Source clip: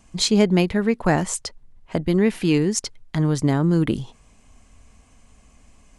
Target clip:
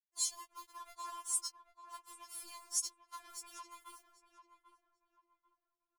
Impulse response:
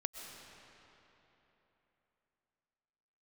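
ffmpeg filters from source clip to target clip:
-filter_complex "[0:a]firequalizer=gain_entry='entry(100,0);entry(300,-21);entry(640,-28);entry(1000,12);entry(1800,-22);entry(6100,-9);entry(12000,-4)':delay=0.05:min_phase=1,tremolo=f=240:d=0.857,aecho=1:1:4.9:0.58,acompressor=threshold=-32dB:ratio=16,aderivative,acrusher=bits=8:mix=0:aa=0.5,asplit=2[a][b];[b]adelay=792,lowpass=f=1.5k:p=1,volume=-9dB,asplit=2[c][d];[d]adelay=792,lowpass=f=1.5k:p=1,volume=0.36,asplit=2[e][f];[f]adelay=792,lowpass=f=1.5k:p=1,volume=0.36,asplit=2[g][h];[h]adelay=792,lowpass=f=1.5k:p=1,volume=0.36[i];[c][e][g][i]amix=inputs=4:normalize=0[j];[a][j]amix=inputs=2:normalize=0,afftfilt=real='re*4*eq(mod(b,16),0)':imag='im*4*eq(mod(b,16),0)':win_size=2048:overlap=0.75,volume=8.5dB"

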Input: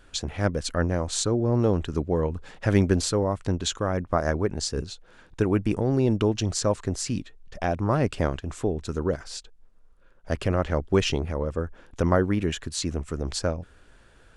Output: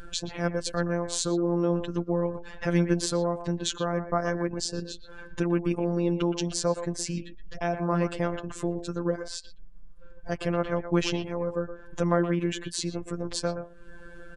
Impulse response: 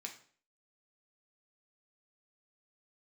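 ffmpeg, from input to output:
-filter_complex "[0:a]afftfilt=real='hypot(re,im)*cos(PI*b)':imag='0':win_size=1024:overlap=0.75,asplit=2[a][b];[b]acompressor=threshold=-41dB:ratio=16,volume=-0.5dB[c];[a][c]amix=inputs=2:normalize=0,asplit=2[d][e];[e]adelay=120,highpass=300,lowpass=3.4k,asoftclip=type=hard:threshold=-18.5dB,volume=-9dB[f];[d][f]amix=inputs=2:normalize=0,afftdn=nr=14:nf=-50,acompressor=mode=upward:threshold=-31dB:ratio=2.5"

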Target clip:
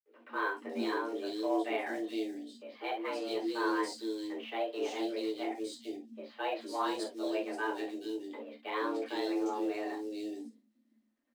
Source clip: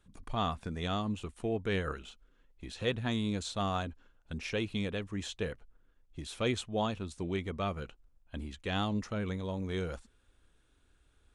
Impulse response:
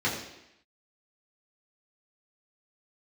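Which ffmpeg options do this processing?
-filter_complex "[0:a]agate=range=-33dB:threshold=-56dB:ratio=3:detection=peak,afreqshift=190,acrusher=bits=5:mode=log:mix=0:aa=0.000001,asetrate=49501,aresample=44100,atempo=0.890899,acrossover=split=410|3200[a][b][c];[c]adelay=430[d];[a]adelay=460[e];[e][b][d]amix=inputs=3:normalize=0[f];[1:a]atrim=start_sample=2205,atrim=end_sample=3969,asetrate=52920,aresample=44100[g];[f][g]afir=irnorm=-1:irlink=0,volume=-9dB" -ar 44100 -c:a adpcm_ima_wav

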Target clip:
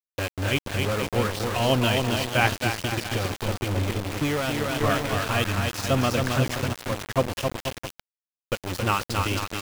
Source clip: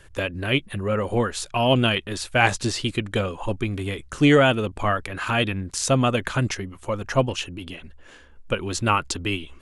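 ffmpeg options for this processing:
-filter_complex "[0:a]lowpass=f=5.6k:w=0.5412,lowpass=f=5.6k:w=1.3066,aecho=1:1:270|486|658.8|797|907.6:0.631|0.398|0.251|0.158|0.1,asettb=1/sr,asplit=3[a][b][c];[a]atrim=end=2.674[d];[b]atrim=start=2.67:end=4.81,asetpts=PTS-STARTPTS,afade=t=in:d=0.004:c=qsin,afade=t=out:st=2.136:d=0.004:c=qsin,acompressor=threshold=-19dB:ratio=6[e];[c]atrim=start=4.806[f];[d][e]acrossfade=d=0.004:c1=hsin:c2=qsin[g];[g][f]acrossfade=d=0.004:c1=qsin:c2=hsin,equalizer=f=91:w=4.4:g=10,aeval=exprs='val(0)*gte(abs(val(0)),0.0794)':c=same,volume=-3.5dB"

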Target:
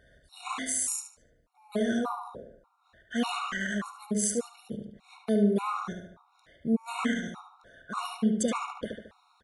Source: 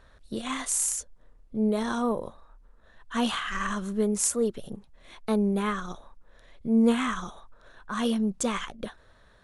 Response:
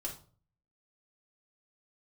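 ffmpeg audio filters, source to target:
-filter_complex "[0:a]highpass=63,asplit=2[a][b];[b]adelay=73,lowpass=f=3.9k:p=1,volume=-4dB,asplit=2[c][d];[d]adelay=73,lowpass=f=3.9k:p=1,volume=0.5,asplit=2[e][f];[f]adelay=73,lowpass=f=3.9k:p=1,volume=0.5,asplit=2[g][h];[h]adelay=73,lowpass=f=3.9k:p=1,volume=0.5,asplit=2[i][j];[j]adelay=73,lowpass=f=3.9k:p=1,volume=0.5,asplit=2[k][l];[l]adelay=73,lowpass=f=3.9k:p=1,volume=0.5[m];[a][c][e][g][i][k][m]amix=inputs=7:normalize=0,afftfilt=real='re*gt(sin(2*PI*1.7*pts/sr)*(1-2*mod(floor(b*sr/1024/730),2)),0)':imag='im*gt(sin(2*PI*1.7*pts/sr)*(1-2*mod(floor(b*sr/1024/730),2)),0)':win_size=1024:overlap=0.75"

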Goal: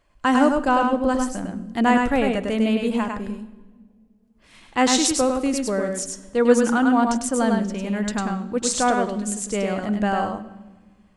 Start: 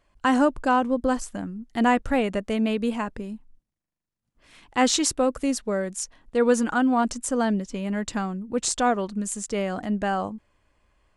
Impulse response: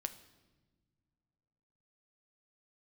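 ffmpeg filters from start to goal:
-filter_complex "[0:a]asplit=2[a][b];[1:a]atrim=start_sample=2205,asetrate=38367,aresample=44100,adelay=101[c];[b][c]afir=irnorm=-1:irlink=0,volume=-2.5dB[d];[a][d]amix=inputs=2:normalize=0,volume=1.5dB"

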